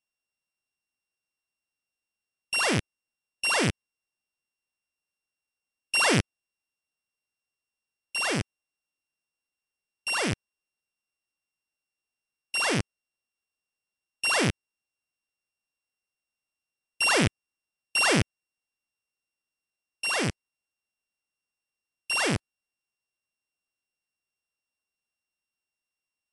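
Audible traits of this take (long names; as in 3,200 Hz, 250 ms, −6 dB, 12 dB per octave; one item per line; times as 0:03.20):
a buzz of ramps at a fixed pitch in blocks of 16 samples
MP3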